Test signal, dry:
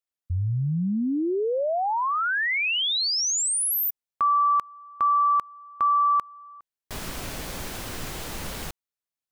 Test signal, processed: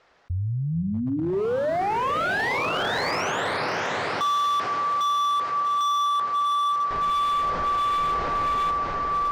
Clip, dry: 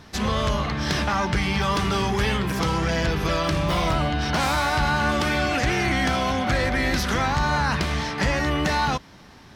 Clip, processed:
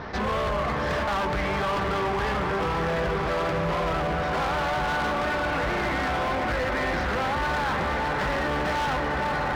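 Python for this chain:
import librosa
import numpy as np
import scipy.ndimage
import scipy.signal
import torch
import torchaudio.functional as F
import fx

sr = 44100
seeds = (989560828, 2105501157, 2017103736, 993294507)

y = scipy.signal.sosfilt(scipy.signal.butter(4, 5200.0, 'lowpass', fs=sr, output='sos'), x)
y = fx.high_shelf(y, sr, hz=2100.0, db=-7.5)
y = fx.echo_diffused(y, sr, ms=564, feedback_pct=75, wet_db=-6)
y = fx.rider(y, sr, range_db=4, speed_s=2.0)
y = fx.band_shelf(y, sr, hz=910.0, db=8.0, octaves=2.7)
y = np.clip(10.0 ** (17.5 / 20.0) * y, -1.0, 1.0) / 10.0 ** (17.5 / 20.0)
y = fx.comb_fb(y, sr, f0_hz=55.0, decay_s=0.57, harmonics='odd', damping=0.6, mix_pct=60)
y = fx.env_flatten(y, sr, amount_pct=50)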